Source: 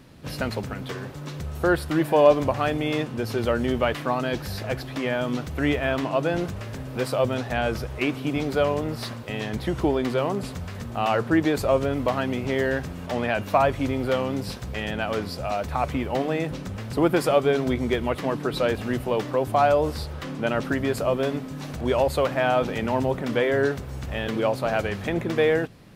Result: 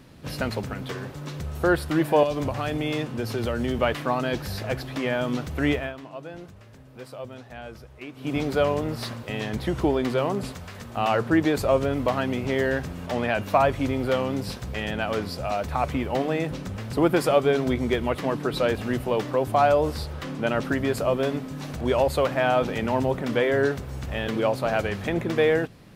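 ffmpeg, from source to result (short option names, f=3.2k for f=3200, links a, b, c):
-filter_complex "[0:a]asettb=1/sr,asplit=3[a][b][c];[a]atrim=end=2.234[d];[b]atrim=start=2.23:end=3.79,asetpts=PTS-STARTPTS,afade=t=in:d=0.004:c=qsin,afade=t=out:st=1.556:d=0.004:c=qsin,acrossover=split=190|3000[e][f][g];[f]acompressor=threshold=-24dB:ratio=6:attack=3.2:release=140:knee=2.83:detection=peak[h];[e][h][g]amix=inputs=3:normalize=0[i];[c]atrim=start=3.786[j];[d][i]acrossfade=d=0.004:c1=hsin:c2=qsin[k];[k][j]acrossfade=d=0.004:c1=qsin:c2=hsin,asettb=1/sr,asplit=3[l][m][n];[l]atrim=end=10.524[o];[m]atrim=start=10.52:end=10.97,asetpts=PTS-STARTPTS,afade=t=in:d=0.004:c=qsin,afade=t=out:st=0.446:d=0.004:c=qsin,lowshelf=f=390:g=-7.5[p];[n]atrim=start=10.966[q];[o][p]acrossfade=d=0.004:c1=hsin:c2=qsin[r];[r][q]acrossfade=d=0.004:c1=qsin:c2=hsin,asplit=3[s][t][u];[s]atrim=end=5.93,asetpts=PTS-STARTPTS,afade=t=out:st=5.73:d=0.2:silence=0.188365[v];[t]atrim=start=5.93:end=8.15,asetpts=PTS-STARTPTS,volume=-14.5dB[w];[u]atrim=start=8.15,asetpts=PTS-STARTPTS,afade=t=in:d=0.2:silence=0.188365[x];[v][w][x]concat=n=3:v=0:a=1"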